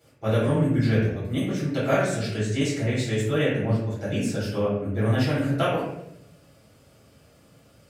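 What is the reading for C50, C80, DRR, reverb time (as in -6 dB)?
1.5 dB, 5.0 dB, -11.0 dB, 0.80 s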